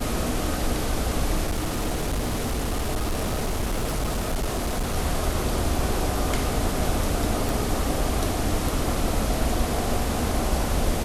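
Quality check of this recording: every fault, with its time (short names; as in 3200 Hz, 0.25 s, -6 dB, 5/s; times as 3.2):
1.47–4.95 clipped -21.5 dBFS
7.49 pop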